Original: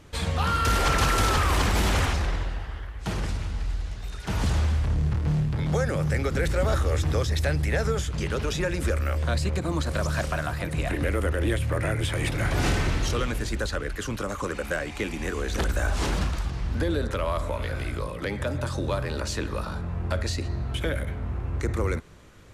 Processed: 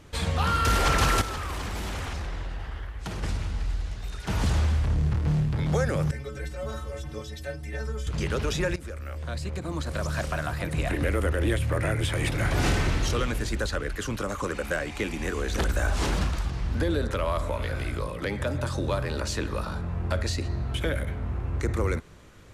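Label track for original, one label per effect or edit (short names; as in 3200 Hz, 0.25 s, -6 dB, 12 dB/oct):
1.210000	3.230000	compressor, threshold -29 dBFS
6.110000	8.070000	metallic resonator 65 Hz, decay 0.57 s, inharmonicity 0.03
8.760000	10.750000	fade in, from -14.5 dB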